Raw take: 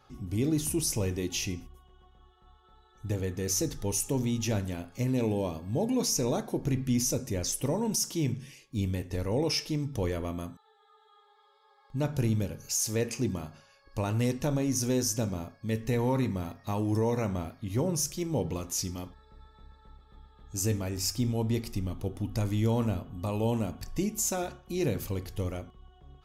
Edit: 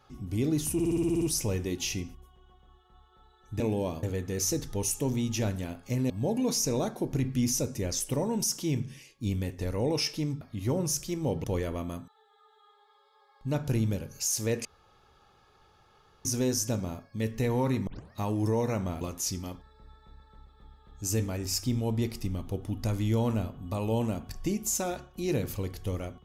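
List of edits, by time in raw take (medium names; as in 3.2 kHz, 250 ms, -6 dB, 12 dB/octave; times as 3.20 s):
0.74 s: stutter 0.06 s, 9 plays
5.19–5.62 s: move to 3.12 s
13.14–14.74 s: room tone
16.36 s: tape start 0.26 s
17.50–18.53 s: move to 9.93 s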